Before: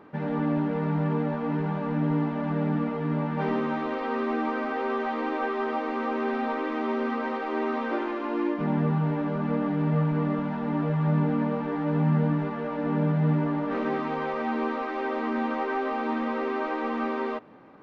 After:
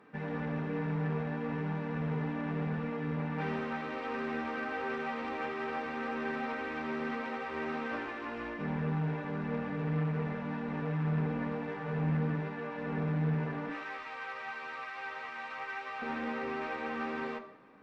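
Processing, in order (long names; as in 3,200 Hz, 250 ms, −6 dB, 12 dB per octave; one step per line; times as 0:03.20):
0:13.69–0:16.02: high-pass filter 930 Hz 12 dB per octave
tube saturation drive 21 dB, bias 0.6
convolution reverb RT60 0.95 s, pre-delay 3 ms, DRR 5.5 dB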